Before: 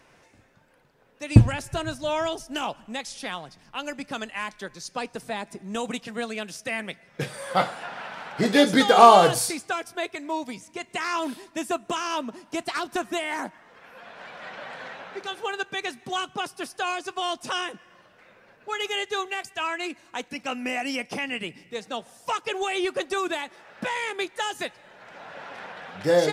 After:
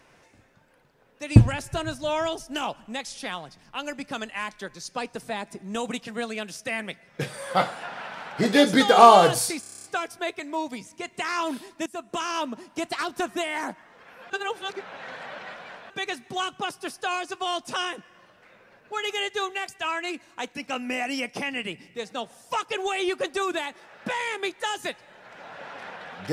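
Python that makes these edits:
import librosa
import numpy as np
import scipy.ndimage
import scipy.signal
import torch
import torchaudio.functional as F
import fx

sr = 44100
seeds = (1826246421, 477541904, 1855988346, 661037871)

y = fx.edit(x, sr, fx.stutter(start_s=9.6, slice_s=0.03, count=9),
    fx.fade_in_from(start_s=11.62, length_s=0.38, floor_db=-17.0),
    fx.reverse_span(start_s=14.06, length_s=1.6), tone=tone)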